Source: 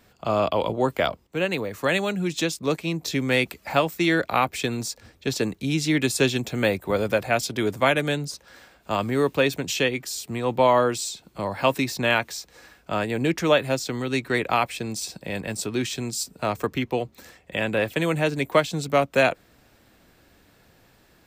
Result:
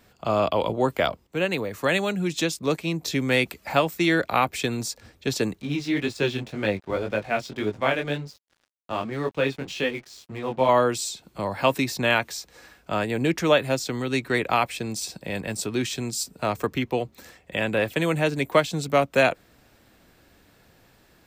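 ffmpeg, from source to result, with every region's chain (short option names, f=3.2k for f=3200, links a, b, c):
-filter_complex "[0:a]asettb=1/sr,asplit=3[a][b][c];[a]atrim=end=5.614[d];[b]atrim=start=5.61:end=10.69,asetpts=PTS-STARTPTS,afade=t=in:d=0.004:c=qsin,afade=t=out:st=5.076:d=0.004:c=qsin,lowpass=4.3k,flanger=delay=19:depth=4:speed=1.9,aeval=exprs='sgn(val(0))*max(abs(val(0))-0.00447,0)':c=same[e];[c]atrim=start=10.686[f];[d][e]acrossfade=d=0.004:c1=hsin:c2=qsin[g];[g][f]acrossfade=d=0.004:c1=qsin:c2=hsin"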